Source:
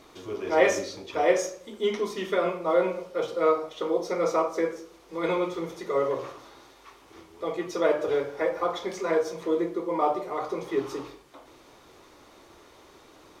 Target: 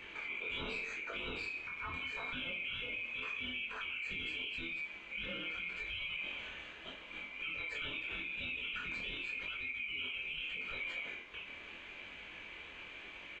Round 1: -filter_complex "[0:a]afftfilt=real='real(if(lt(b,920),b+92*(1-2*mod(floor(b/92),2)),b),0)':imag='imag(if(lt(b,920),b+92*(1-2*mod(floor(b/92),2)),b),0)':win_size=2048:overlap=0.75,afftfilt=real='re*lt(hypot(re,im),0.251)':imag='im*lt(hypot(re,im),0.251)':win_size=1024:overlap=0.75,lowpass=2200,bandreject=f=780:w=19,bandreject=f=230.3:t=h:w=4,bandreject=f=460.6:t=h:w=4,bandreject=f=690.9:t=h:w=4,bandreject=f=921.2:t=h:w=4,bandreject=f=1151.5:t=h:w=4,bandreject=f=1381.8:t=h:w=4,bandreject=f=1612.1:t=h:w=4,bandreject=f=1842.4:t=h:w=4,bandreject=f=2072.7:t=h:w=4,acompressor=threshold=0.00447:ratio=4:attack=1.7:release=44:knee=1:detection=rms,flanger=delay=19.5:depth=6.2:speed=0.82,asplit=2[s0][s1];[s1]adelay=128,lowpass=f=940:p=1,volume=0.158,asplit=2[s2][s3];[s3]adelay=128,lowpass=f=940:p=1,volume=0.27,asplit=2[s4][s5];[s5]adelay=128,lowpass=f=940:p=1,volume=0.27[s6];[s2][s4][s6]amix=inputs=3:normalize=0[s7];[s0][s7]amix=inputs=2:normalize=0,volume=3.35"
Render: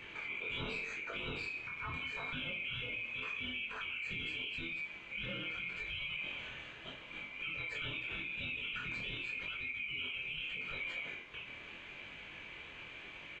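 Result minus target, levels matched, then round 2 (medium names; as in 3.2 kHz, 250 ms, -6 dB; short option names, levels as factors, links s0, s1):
125 Hz band +5.5 dB
-filter_complex "[0:a]afftfilt=real='real(if(lt(b,920),b+92*(1-2*mod(floor(b/92),2)),b),0)':imag='imag(if(lt(b,920),b+92*(1-2*mod(floor(b/92),2)),b),0)':win_size=2048:overlap=0.75,afftfilt=real='re*lt(hypot(re,im),0.251)':imag='im*lt(hypot(re,im),0.251)':win_size=1024:overlap=0.75,lowpass=2200,bandreject=f=780:w=19,bandreject=f=230.3:t=h:w=4,bandreject=f=460.6:t=h:w=4,bandreject=f=690.9:t=h:w=4,bandreject=f=921.2:t=h:w=4,bandreject=f=1151.5:t=h:w=4,bandreject=f=1381.8:t=h:w=4,bandreject=f=1612.1:t=h:w=4,bandreject=f=1842.4:t=h:w=4,bandreject=f=2072.7:t=h:w=4,acompressor=threshold=0.00447:ratio=4:attack=1.7:release=44:knee=1:detection=rms,equalizer=f=130:w=3.1:g=-13.5,flanger=delay=19.5:depth=6.2:speed=0.82,asplit=2[s0][s1];[s1]adelay=128,lowpass=f=940:p=1,volume=0.158,asplit=2[s2][s3];[s3]adelay=128,lowpass=f=940:p=1,volume=0.27,asplit=2[s4][s5];[s5]adelay=128,lowpass=f=940:p=1,volume=0.27[s6];[s2][s4][s6]amix=inputs=3:normalize=0[s7];[s0][s7]amix=inputs=2:normalize=0,volume=3.35"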